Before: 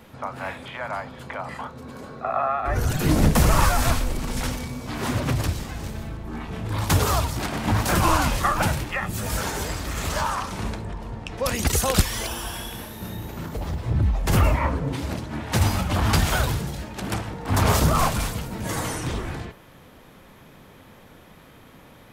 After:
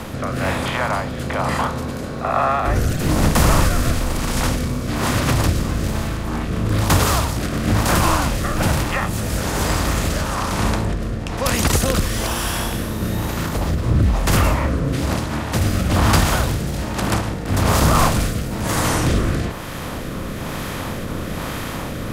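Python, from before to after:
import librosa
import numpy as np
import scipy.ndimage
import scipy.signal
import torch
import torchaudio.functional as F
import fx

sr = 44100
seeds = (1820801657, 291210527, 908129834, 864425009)

p1 = fx.bin_compress(x, sr, power=0.6)
p2 = fx.rider(p1, sr, range_db=10, speed_s=2.0)
p3 = p1 + (p2 * 10.0 ** (2.0 / 20.0))
p4 = fx.rotary(p3, sr, hz=1.1)
p5 = fx.end_taper(p4, sr, db_per_s=120.0)
y = p5 * 10.0 ** (-5.0 / 20.0)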